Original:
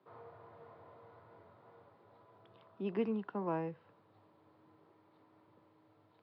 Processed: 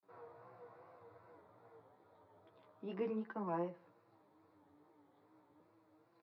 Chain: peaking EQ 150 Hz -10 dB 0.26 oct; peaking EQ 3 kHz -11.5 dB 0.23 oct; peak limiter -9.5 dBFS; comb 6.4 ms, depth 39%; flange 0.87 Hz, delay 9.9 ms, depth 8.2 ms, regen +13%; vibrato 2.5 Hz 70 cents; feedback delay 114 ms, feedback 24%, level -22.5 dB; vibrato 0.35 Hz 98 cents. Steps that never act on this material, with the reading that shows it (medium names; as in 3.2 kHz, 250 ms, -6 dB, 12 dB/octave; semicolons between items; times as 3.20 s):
peak limiter -9.5 dBFS: peak at its input -24.0 dBFS